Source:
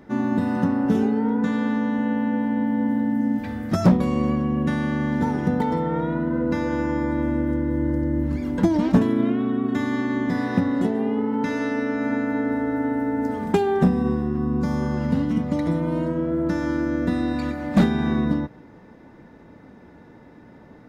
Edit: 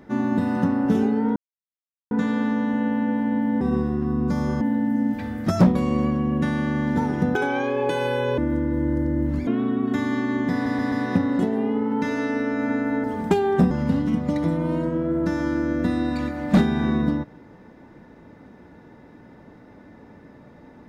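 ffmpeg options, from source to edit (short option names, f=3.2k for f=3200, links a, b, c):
-filter_complex "[0:a]asplit=12[a][b][c][d][e][f][g][h][i][j][k][l];[a]atrim=end=1.36,asetpts=PTS-STARTPTS,afade=t=out:st=1.356:d=0.004:c=hsin,apad=pad_dur=0.75[m];[b]atrim=start=1.36:end=2.862,asetpts=PTS-STARTPTS,afade=t=in:d=0.004:c=hsin[n];[c]atrim=start=13.938:end=14.942[o];[d]atrim=start=2.858:end=5.604[p];[e]atrim=start=5.6:end=7.35,asetpts=PTS-STARTPTS,asetrate=74970,aresample=44100,atrim=end_sample=45397,asetpts=PTS-STARTPTS[q];[f]atrim=start=7.346:end=8.442[r];[g]atrim=start=9.278:end=10.472[s];[h]atrim=start=10.338:end=10.472[t];[i]atrim=start=10.338:end=10.472[u];[j]atrim=start=10.338:end=12.462[v];[k]atrim=start=13.268:end=13.942[w];[l]atrim=start=14.938[x];[m][n]concat=n=2:v=0:a=1[y];[y][o]acrossfade=d=0.004:c1=hsin:c2=hsin[z];[z][p]acrossfade=d=0.004:c1=hsin:c2=hsin[aa];[aa][q]acrossfade=d=0.004:c1=hsin:c2=hsin[ab];[ab][r]acrossfade=d=0.004:c1=hsin:c2=hsin[ac];[ac][s]acrossfade=d=0.004:c1=hsin:c2=hsin[ad];[ad][t]acrossfade=d=0.004:c1=hsin:c2=hsin[ae];[ae][u]acrossfade=d=0.004:c1=hsin:c2=hsin[af];[af][v]acrossfade=d=0.004:c1=hsin:c2=hsin[ag];[ag][w]acrossfade=d=0.004:c1=hsin:c2=hsin[ah];[ah][x]acrossfade=d=0.004:c1=hsin:c2=hsin"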